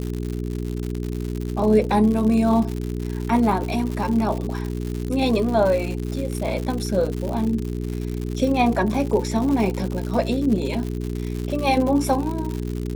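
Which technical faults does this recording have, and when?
crackle 150/s -26 dBFS
hum 60 Hz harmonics 7 -27 dBFS

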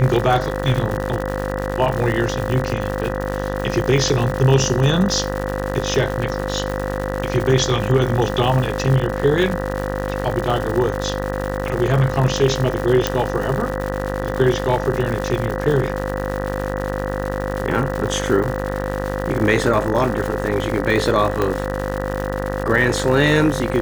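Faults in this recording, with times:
buzz 50 Hz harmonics 39 -25 dBFS
crackle 210/s -24 dBFS
tone 520 Hz -26 dBFS
13.07 pop -3 dBFS
21.42 pop -8 dBFS

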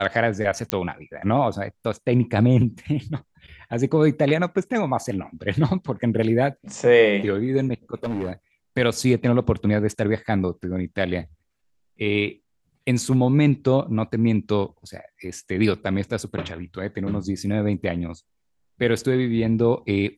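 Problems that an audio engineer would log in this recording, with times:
0.7 pop -6 dBFS
8.03–8.32 clipped -22 dBFS

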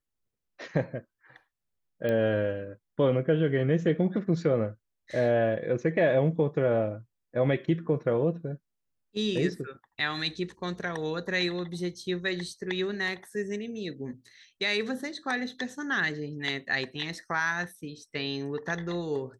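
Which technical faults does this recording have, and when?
2.09 pop -19 dBFS

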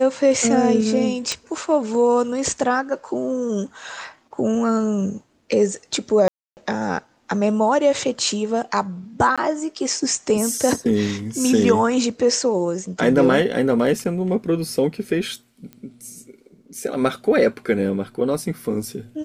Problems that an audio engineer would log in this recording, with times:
1.32 pop -7 dBFS
6.28–6.57 gap 0.289 s
9.36–9.38 gap 16 ms
15.73 pop -23 dBFS

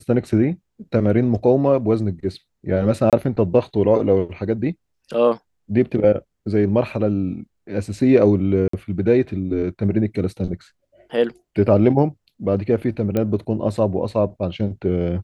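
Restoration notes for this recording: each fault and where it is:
3.1–3.13 gap 27 ms
8.68–8.73 gap 54 ms
13.17 pop -10 dBFS

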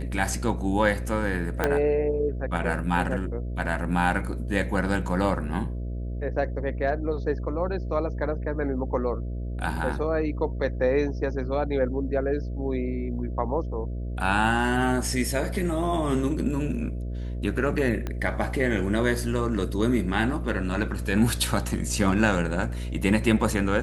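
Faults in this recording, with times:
buzz 60 Hz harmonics 11 -31 dBFS
1.64 pop -9 dBFS
18.07 pop -17 dBFS

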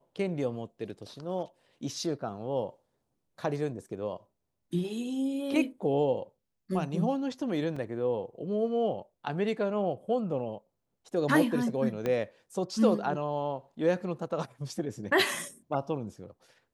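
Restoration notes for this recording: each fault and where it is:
7.76 gap 4.5 ms
12.06 pop -18 dBFS

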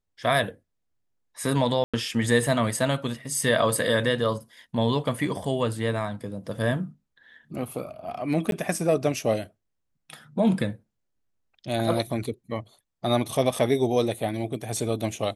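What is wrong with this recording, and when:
1.84–1.94 gap 96 ms
8.51–8.52 gap 12 ms

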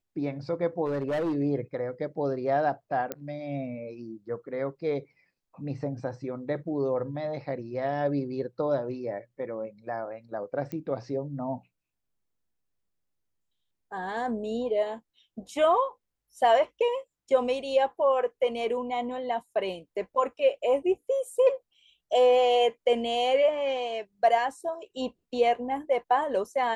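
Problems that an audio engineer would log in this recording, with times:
0.85–1.36 clipped -25 dBFS
3.12 pop -17 dBFS
10.72 pop -23 dBFS

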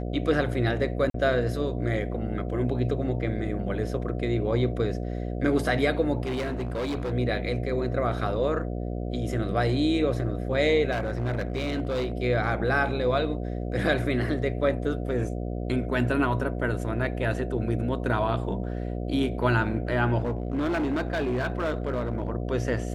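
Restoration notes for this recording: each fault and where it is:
buzz 60 Hz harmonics 12 -31 dBFS
1.1–1.14 gap 43 ms
6.23–7.13 clipped -26 dBFS
10.91–12.12 clipped -23.5 dBFS
20.2–22.3 clipped -23 dBFS

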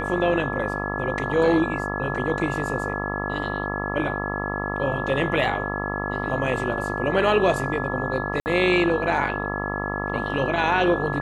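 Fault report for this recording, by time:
buzz 50 Hz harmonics 27 -29 dBFS
tone 1700 Hz -30 dBFS
8.4–8.46 gap 59 ms

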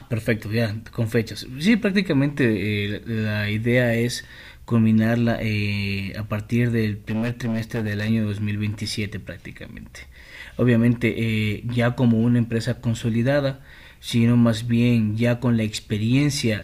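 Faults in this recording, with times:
7.09–8.1 clipped -21 dBFS

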